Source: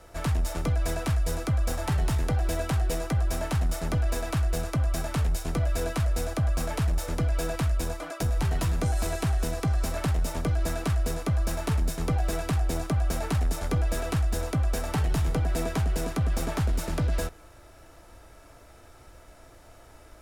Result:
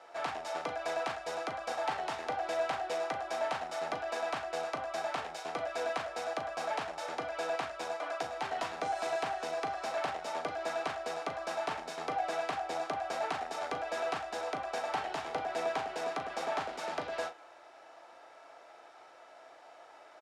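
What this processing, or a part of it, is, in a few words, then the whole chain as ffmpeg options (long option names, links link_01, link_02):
intercom: -filter_complex "[0:a]highpass=480,lowpass=4300,lowshelf=frequency=280:gain=-6,equalizer=frequency=770:width_type=o:width=0.5:gain=7.5,asoftclip=type=tanh:threshold=-22dB,asplit=2[link_01][link_02];[link_02]adelay=38,volume=-9dB[link_03];[link_01][link_03]amix=inputs=2:normalize=0,volume=-1dB"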